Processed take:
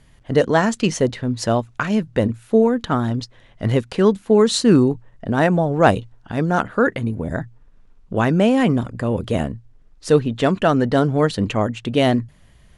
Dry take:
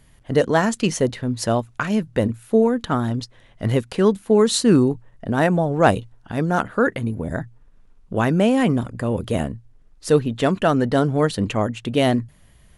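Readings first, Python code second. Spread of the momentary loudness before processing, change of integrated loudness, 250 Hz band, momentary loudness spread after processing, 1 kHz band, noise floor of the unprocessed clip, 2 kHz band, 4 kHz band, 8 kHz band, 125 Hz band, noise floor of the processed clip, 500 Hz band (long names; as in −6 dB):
11 LU, +1.5 dB, +1.5 dB, 11 LU, +1.5 dB, −53 dBFS, +1.5 dB, +1.5 dB, −1.0 dB, +1.5 dB, −51 dBFS, +1.5 dB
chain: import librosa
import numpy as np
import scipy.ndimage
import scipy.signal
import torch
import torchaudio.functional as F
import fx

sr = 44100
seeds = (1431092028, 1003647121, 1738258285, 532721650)

y = scipy.signal.sosfilt(scipy.signal.butter(2, 7900.0, 'lowpass', fs=sr, output='sos'), x)
y = y * 10.0 ** (1.5 / 20.0)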